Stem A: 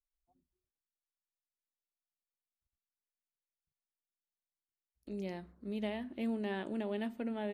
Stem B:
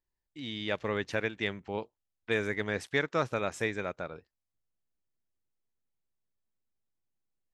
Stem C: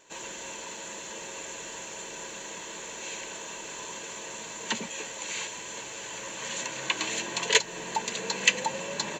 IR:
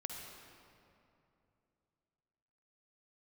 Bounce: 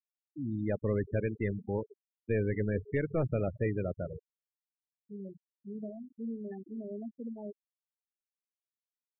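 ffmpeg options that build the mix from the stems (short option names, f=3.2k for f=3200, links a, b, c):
-filter_complex "[0:a]volume=-2.5dB,asplit=2[a][b];[b]volume=-18.5dB[c];[1:a]lowpass=f=3.1k:p=1,lowshelf=f=150:g=11.5,aeval=exprs='(tanh(17.8*val(0)+0.3)-tanh(0.3))/17.8':c=same,volume=1dB,asplit=2[d][e];[e]volume=-8.5dB[f];[3:a]atrim=start_sample=2205[g];[c][f]amix=inputs=2:normalize=0[h];[h][g]afir=irnorm=-1:irlink=0[i];[a][d][i]amix=inputs=3:normalize=0,afftfilt=real='re*gte(hypot(re,im),0.0501)':imag='im*gte(hypot(re,im),0.0501)':win_size=1024:overlap=0.75,asuperstop=centerf=4500:order=4:qfactor=0.72,equalizer=f=1.3k:t=o:w=0.9:g=-11"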